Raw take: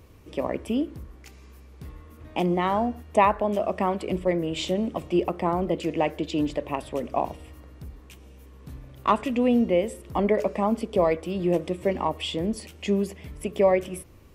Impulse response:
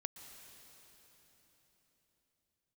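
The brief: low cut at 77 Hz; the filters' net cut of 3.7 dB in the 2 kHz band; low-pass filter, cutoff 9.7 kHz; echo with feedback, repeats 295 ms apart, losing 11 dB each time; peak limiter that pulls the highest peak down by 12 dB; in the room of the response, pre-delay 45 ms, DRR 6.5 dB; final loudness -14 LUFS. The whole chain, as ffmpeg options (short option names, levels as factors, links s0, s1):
-filter_complex "[0:a]highpass=77,lowpass=9700,equalizer=f=2000:t=o:g=-4.5,alimiter=limit=0.1:level=0:latency=1,aecho=1:1:295|590|885:0.282|0.0789|0.0221,asplit=2[s0][s1];[1:a]atrim=start_sample=2205,adelay=45[s2];[s1][s2]afir=irnorm=-1:irlink=0,volume=0.668[s3];[s0][s3]amix=inputs=2:normalize=0,volume=5.96"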